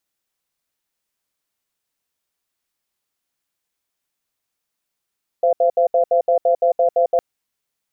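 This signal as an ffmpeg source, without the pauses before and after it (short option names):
-f lavfi -i "aevalsrc='0.178*(sin(2*PI*517*t)+sin(2*PI*684*t))*clip(min(mod(t,0.17),0.1-mod(t,0.17))/0.005,0,1)':d=1.76:s=44100"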